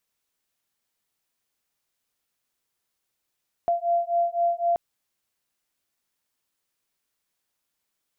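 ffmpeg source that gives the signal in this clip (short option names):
-f lavfi -i "aevalsrc='0.0631*(sin(2*PI*686*t)+sin(2*PI*689.9*t))':d=1.08:s=44100"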